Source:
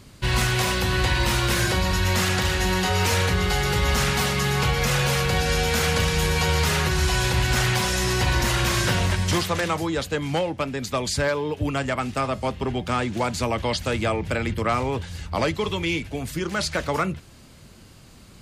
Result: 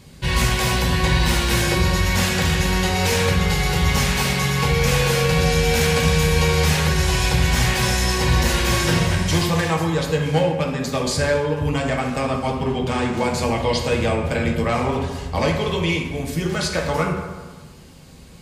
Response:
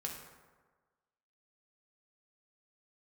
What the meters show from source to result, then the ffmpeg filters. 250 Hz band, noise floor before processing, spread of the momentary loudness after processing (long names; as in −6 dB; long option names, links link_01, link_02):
+4.5 dB, −48 dBFS, 5 LU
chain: -filter_complex "[0:a]equalizer=frequency=1300:width_type=o:width=0.33:gain=-7[link_01];[1:a]atrim=start_sample=2205[link_02];[link_01][link_02]afir=irnorm=-1:irlink=0,volume=4dB"